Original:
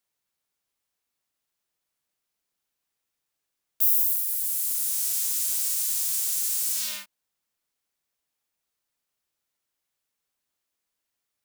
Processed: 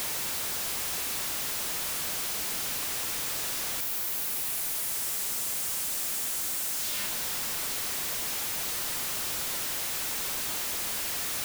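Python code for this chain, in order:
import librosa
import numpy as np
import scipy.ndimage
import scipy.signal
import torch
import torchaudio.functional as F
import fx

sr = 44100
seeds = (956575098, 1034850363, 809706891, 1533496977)

y = np.sign(x) * np.sqrt(np.mean(np.square(x)))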